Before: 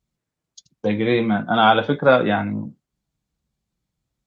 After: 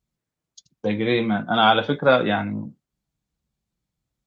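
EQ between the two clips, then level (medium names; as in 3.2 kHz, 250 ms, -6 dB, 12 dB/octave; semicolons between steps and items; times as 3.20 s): dynamic bell 4.3 kHz, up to +5 dB, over -34 dBFS, Q 0.74; -2.5 dB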